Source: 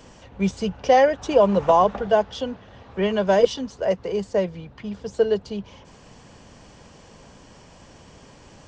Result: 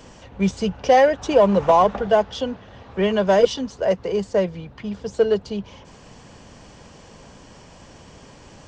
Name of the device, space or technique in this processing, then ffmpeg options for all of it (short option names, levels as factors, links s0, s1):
parallel distortion: -filter_complex "[0:a]asplit=2[s0][s1];[s1]asoftclip=type=hard:threshold=0.126,volume=0.355[s2];[s0][s2]amix=inputs=2:normalize=0"